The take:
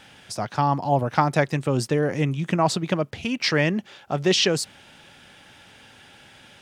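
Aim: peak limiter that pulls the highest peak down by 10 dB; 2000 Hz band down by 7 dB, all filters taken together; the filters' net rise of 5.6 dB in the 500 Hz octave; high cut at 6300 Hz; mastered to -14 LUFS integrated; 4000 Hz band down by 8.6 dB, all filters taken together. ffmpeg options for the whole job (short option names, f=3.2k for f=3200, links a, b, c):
-af "lowpass=6.3k,equalizer=f=500:t=o:g=7.5,equalizer=f=2k:t=o:g=-7,equalizer=f=4k:t=o:g=-8.5,volume=11dB,alimiter=limit=-2dB:level=0:latency=1"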